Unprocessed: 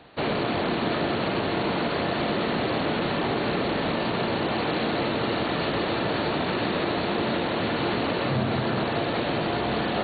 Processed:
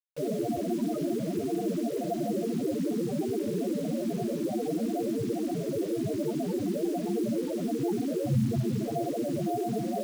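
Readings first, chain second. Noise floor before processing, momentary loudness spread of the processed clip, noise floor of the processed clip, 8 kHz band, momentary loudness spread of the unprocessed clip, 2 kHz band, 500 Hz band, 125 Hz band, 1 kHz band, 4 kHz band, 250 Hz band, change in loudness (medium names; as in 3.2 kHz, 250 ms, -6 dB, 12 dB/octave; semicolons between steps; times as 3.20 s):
-28 dBFS, 2 LU, -33 dBFS, no reading, 1 LU, -22.5 dB, -4.0 dB, -3.0 dB, -11.5 dB, -17.5 dB, -1.0 dB, -4.5 dB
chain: loudest bins only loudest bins 4; word length cut 8-bit, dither none; trim +3 dB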